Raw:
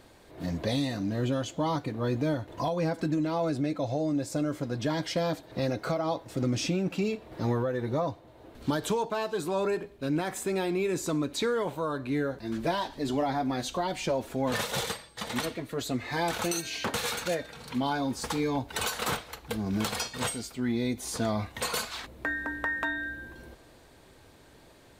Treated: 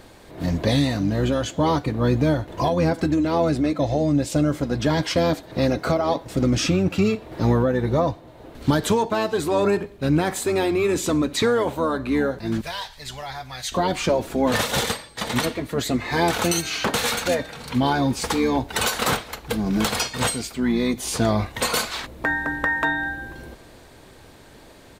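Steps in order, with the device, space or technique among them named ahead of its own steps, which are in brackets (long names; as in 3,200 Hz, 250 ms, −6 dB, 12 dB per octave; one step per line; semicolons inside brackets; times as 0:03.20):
octave pedal (pitch-shifted copies added −12 semitones −9 dB)
0:12.61–0:13.72: guitar amp tone stack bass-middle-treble 10-0-10
level +8 dB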